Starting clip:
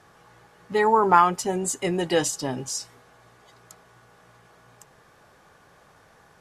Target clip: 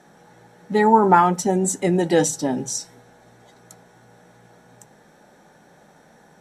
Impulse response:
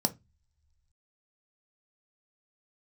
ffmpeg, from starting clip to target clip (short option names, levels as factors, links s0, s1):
-filter_complex "[0:a]asplit=2[s0][s1];[s1]equalizer=f=970:w=1.5:g=-2[s2];[1:a]atrim=start_sample=2205[s3];[s2][s3]afir=irnorm=-1:irlink=0,volume=0.531[s4];[s0][s4]amix=inputs=2:normalize=0,volume=0.75"